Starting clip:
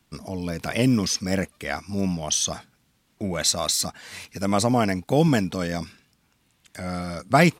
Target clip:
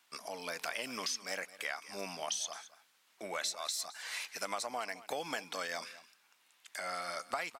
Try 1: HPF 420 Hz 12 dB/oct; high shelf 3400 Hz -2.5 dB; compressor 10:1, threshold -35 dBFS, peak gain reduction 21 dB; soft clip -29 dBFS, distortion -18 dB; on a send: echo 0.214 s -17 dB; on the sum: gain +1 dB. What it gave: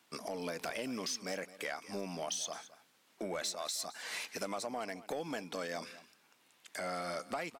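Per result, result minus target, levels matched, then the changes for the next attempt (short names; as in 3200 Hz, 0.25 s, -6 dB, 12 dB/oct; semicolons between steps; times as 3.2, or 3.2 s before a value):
soft clip: distortion +15 dB; 500 Hz band +3.5 dB
change: soft clip -19 dBFS, distortion -33 dB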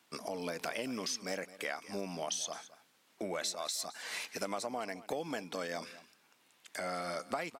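500 Hz band +3.5 dB
change: HPF 900 Hz 12 dB/oct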